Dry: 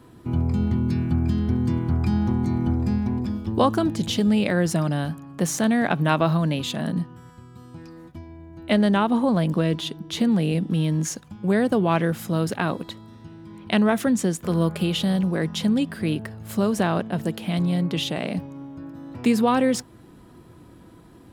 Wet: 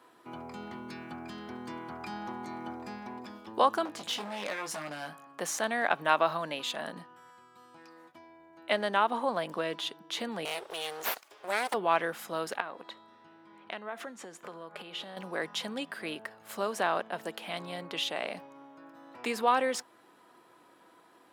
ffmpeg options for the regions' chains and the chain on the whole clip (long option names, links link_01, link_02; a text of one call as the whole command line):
ffmpeg -i in.wav -filter_complex "[0:a]asettb=1/sr,asplit=3[link_01][link_02][link_03];[link_01]atrim=end=3.854[link_04];[link_02]atrim=start=3.85:end=5.27,asetpts=PTS-STARTPTS,afade=type=in:duration=0.004:curve=qsin,afade=type=out:start_time=1.416:duration=0.004:curve=qsin,acompressor=threshold=-24dB:ratio=2:attack=3.2:release=140:knee=1:detection=peak,aeval=exprs='0.0891*(abs(mod(val(0)/0.0891+3,4)-2)-1)':channel_layout=same,asplit=2[link_05][link_06];[link_06]adelay=20,volume=-6.5dB[link_07];[link_05][link_07]amix=inputs=2:normalize=0,atrim=end_sample=62622[link_08];[link_03]atrim=start=5.266[link_09];[link_04][link_08]acrossfade=duration=0.004:curve1=hsin:curve2=qsin[link_10];[link_10][link_09]acrossfade=duration=0.004:curve1=qsin:curve2=hsin,asettb=1/sr,asplit=3[link_11][link_12][link_13];[link_11]atrim=end=10.454[link_14];[link_12]atrim=start=10.45:end=11.74,asetpts=PTS-STARTPTS,afade=type=in:duration=0.004:curve=qsin,afade=type=out:start_time=1.286:duration=0.004:curve=qsin,highpass=frequency=230:poles=1,highshelf=frequency=3000:gain=11,aeval=exprs='abs(val(0))':channel_layout=same[link_15];[link_13]atrim=start=11.736[link_16];[link_14][link_15]acrossfade=duration=0.004:curve1=hsin:curve2=qsin[link_17];[link_17][link_16]acrossfade=duration=0.004:curve1=qsin:curve2=hsin,asettb=1/sr,asplit=3[link_18][link_19][link_20];[link_18]atrim=end=12.604[link_21];[link_19]atrim=start=12.6:end=15.17,asetpts=PTS-STARTPTS,afade=type=in:duration=0.004:curve=qsin,afade=type=out:start_time=2.566:duration=0.004:curve=qsin,highshelf=frequency=5000:gain=-11.5,acompressor=threshold=-28dB:ratio=6:attack=3.2:release=140:knee=1:detection=peak,bandreject=frequency=345.1:width_type=h:width=4,bandreject=frequency=690.2:width_type=h:width=4,bandreject=frequency=1035.3:width_type=h:width=4,bandreject=frequency=1380.4:width_type=h:width=4,bandreject=frequency=1725.5:width_type=h:width=4,bandreject=frequency=2070.6:width_type=h:width=4,bandreject=frequency=2415.7:width_type=h:width=4,bandreject=frequency=2760.8:width_type=h:width=4,bandreject=frequency=3105.9:width_type=h:width=4,bandreject=frequency=3451:width_type=h:width=4,bandreject=frequency=3796.1:width_type=h:width=4,bandreject=frequency=4141.2:width_type=h:width=4,bandreject=frequency=4486.3:width_type=h:width=4,bandreject=frequency=4831.4:width_type=h:width=4,bandreject=frequency=5176.5:width_type=h:width=4,bandreject=frequency=5521.6:width_type=h:width=4,bandreject=frequency=5866.7:width_type=h:width=4,bandreject=frequency=6211.8:width_type=h:width=4,bandreject=frequency=6556.9:width_type=h:width=4,bandreject=frequency=6902:width_type=h:width=4,bandreject=frequency=7247.1:width_type=h:width=4,bandreject=frequency=7592.2:width_type=h:width=4,bandreject=frequency=7937.3:width_type=h:width=4,bandreject=frequency=8282.4:width_type=h:width=4,bandreject=frequency=8627.5:width_type=h:width=4,bandreject=frequency=8972.6:width_type=h:width=4,bandreject=frequency=9317.7:width_type=h:width=4,bandreject=frequency=9662.8:width_type=h:width=4,bandreject=frequency=10007.9:width_type=h:width=4,bandreject=frequency=10353:width_type=h:width=4,bandreject=frequency=10698.1:width_type=h:width=4,bandreject=frequency=11043.2:width_type=h:width=4,bandreject=frequency=11388.3:width_type=h:width=4,bandreject=frequency=11733.4:width_type=h:width=4,bandreject=frequency=12078.5:width_type=h:width=4,bandreject=frequency=12423.6:width_type=h:width=4,bandreject=frequency=12768.7:width_type=h:width=4,bandreject=frequency=13113.8:width_type=h:width=4[link_22];[link_20]atrim=start=15.166[link_23];[link_21][link_22]acrossfade=duration=0.004:curve1=hsin:curve2=qsin[link_24];[link_24][link_23]acrossfade=duration=0.004:curve1=qsin:curve2=hsin,highpass=720,highshelf=frequency=2900:gain=-7.5" out.wav